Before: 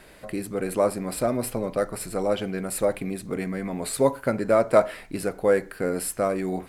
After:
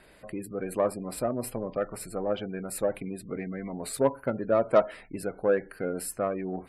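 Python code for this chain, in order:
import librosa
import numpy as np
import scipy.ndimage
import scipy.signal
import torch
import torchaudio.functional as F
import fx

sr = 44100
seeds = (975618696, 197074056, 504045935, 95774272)

y = fx.spec_gate(x, sr, threshold_db=-25, keep='strong')
y = fx.cheby_harmonics(y, sr, harmonics=(7,), levels_db=(-28,), full_scale_db=-4.5)
y = fx.dynamic_eq(y, sr, hz=2100.0, q=1.1, threshold_db=-40.0, ratio=4.0, max_db=-5, at=(4.14, 4.65), fade=0.02)
y = F.gain(torch.from_numpy(y), -3.0).numpy()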